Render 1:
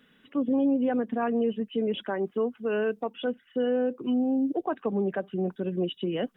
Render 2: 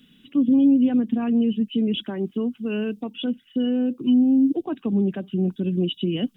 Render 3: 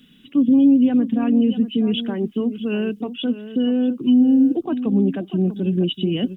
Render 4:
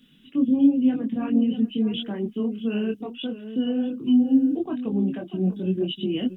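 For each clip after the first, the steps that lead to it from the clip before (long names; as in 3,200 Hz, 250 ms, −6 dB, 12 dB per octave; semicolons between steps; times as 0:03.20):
flat-topped bell 930 Hz −15 dB 2.6 octaves; level +9 dB
slap from a distant wall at 110 metres, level −12 dB; level +3 dB
multi-voice chorus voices 4, 0.89 Hz, delay 23 ms, depth 4.5 ms; level −2 dB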